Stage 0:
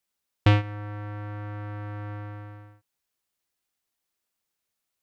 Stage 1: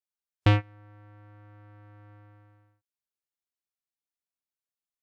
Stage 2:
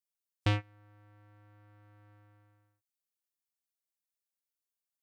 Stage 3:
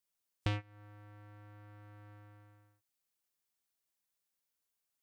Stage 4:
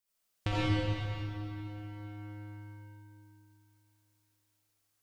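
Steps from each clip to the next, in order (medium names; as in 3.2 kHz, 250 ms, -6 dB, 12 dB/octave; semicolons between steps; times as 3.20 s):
spectral noise reduction 15 dB; trim -1.5 dB
treble shelf 4.4 kHz +12 dB; trim -8.5 dB
compression 3:1, threshold -41 dBFS, peak gain reduction 12 dB; trim +5 dB
algorithmic reverb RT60 3 s, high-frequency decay 0.9×, pre-delay 25 ms, DRR -9.5 dB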